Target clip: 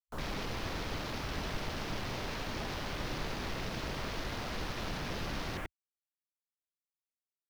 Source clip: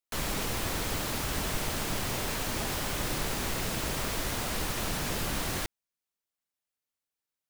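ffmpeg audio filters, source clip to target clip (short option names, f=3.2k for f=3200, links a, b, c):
-af "afwtdn=0.01,volume=-4.5dB"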